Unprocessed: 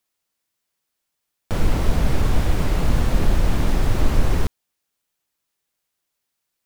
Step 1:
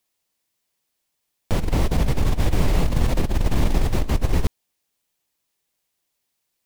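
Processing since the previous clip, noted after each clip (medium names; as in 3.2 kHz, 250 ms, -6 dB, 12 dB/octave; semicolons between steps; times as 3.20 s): peaking EQ 1.4 kHz -5 dB 0.52 oct; compressor with a negative ratio -17 dBFS, ratio -0.5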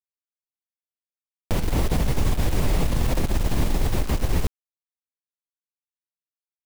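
peak limiter -12 dBFS, peak gain reduction 6.5 dB; bit crusher 6-bit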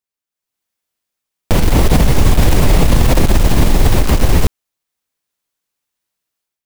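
level rider gain up to 11 dB; peak limiter -8 dBFS, peak gain reduction 5.5 dB; trim +6.5 dB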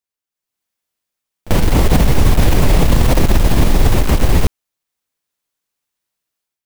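tracing distortion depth 0.25 ms; pre-echo 42 ms -21.5 dB; trim -1 dB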